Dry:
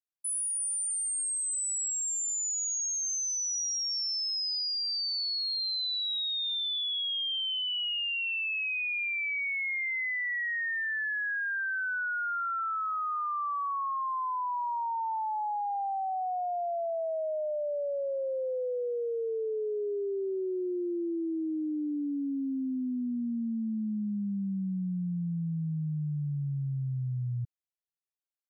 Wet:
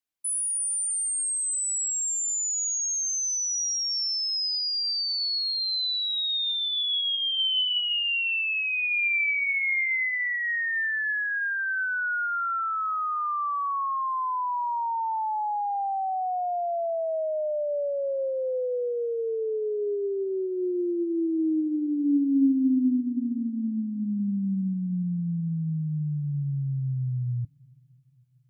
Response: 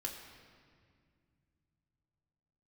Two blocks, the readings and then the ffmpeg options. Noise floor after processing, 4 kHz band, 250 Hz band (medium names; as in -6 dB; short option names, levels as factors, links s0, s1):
-32 dBFS, +5.0 dB, +6.5 dB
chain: -filter_complex "[0:a]asplit=2[s0][s1];[s1]asplit=3[s2][s3][s4];[s2]bandpass=f=270:t=q:w=8,volume=1[s5];[s3]bandpass=f=2290:t=q:w=8,volume=0.501[s6];[s4]bandpass=f=3010:t=q:w=8,volume=0.355[s7];[s5][s6][s7]amix=inputs=3:normalize=0[s8];[1:a]atrim=start_sample=2205[s9];[s8][s9]afir=irnorm=-1:irlink=0,volume=1.26[s10];[s0][s10]amix=inputs=2:normalize=0,volume=1.58"